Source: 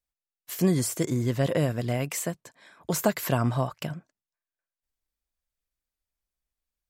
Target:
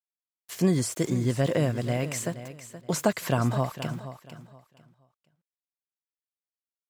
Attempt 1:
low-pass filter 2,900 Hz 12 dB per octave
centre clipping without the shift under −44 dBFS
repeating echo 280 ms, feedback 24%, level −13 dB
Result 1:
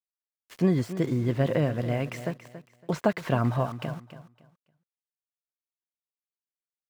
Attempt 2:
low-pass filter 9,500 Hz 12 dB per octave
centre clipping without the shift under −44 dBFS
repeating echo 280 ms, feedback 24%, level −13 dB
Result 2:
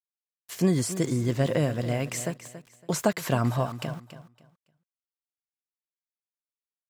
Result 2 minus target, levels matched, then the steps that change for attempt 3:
echo 194 ms early
change: repeating echo 474 ms, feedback 24%, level −13 dB

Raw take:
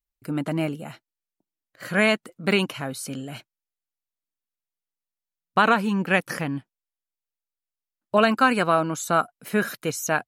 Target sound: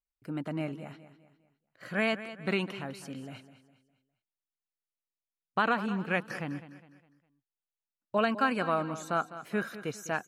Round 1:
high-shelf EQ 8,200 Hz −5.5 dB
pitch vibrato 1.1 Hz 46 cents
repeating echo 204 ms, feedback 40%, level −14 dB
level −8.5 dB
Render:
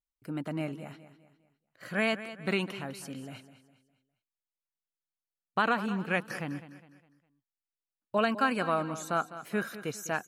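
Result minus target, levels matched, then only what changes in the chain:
8,000 Hz band +3.5 dB
change: high-shelf EQ 8,200 Hz −14.5 dB

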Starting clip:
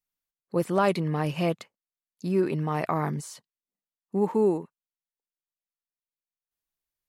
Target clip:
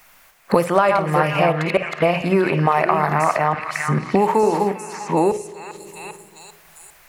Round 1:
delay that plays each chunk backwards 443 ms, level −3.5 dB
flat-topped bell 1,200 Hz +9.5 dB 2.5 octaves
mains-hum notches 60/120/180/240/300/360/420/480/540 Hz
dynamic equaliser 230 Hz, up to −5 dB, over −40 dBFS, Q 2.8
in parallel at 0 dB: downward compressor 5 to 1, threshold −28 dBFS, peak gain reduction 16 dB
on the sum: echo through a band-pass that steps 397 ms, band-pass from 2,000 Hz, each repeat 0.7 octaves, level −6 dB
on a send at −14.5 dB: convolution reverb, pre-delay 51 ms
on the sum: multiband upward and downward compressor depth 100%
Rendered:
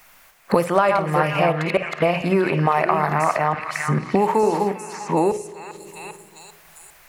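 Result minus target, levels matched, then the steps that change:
downward compressor: peak gain reduction +5 dB
change: downward compressor 5 to 1, threshold −21.5 dBFS, peak gain reduction 11 dB

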